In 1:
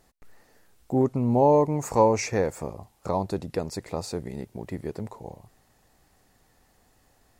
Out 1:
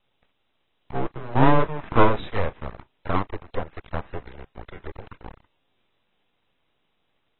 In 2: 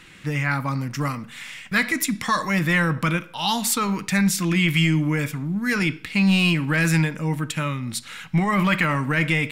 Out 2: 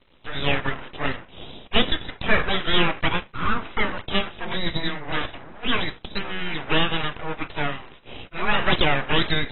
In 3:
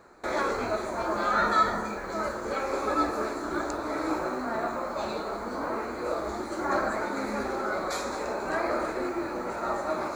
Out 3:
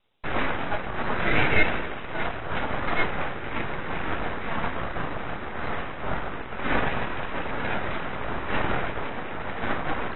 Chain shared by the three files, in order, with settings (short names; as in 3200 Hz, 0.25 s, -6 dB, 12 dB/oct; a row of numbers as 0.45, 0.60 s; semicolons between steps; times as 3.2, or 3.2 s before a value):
crossover distortion -44.5 dBFS; added noise violet -48 dBFS; mistuned SSB -230 Hz 450–2200 Hz; full-wave rectifier; gain +6.5 dB; AAC 16 kbps 24000 Hz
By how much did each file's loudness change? +0.5, -3.0, +1.0 LU